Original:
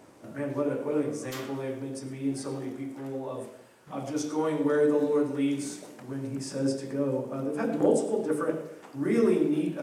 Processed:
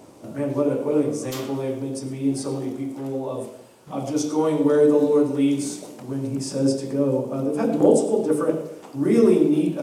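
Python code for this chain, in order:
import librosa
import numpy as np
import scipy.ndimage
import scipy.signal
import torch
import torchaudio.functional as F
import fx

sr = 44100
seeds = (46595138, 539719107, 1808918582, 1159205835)

y = fx.peak_eq(x, sr, hz=1700.0, db=-9.0, octaves=0.91)
y = y * librosa.db_to_amplitude(7.5)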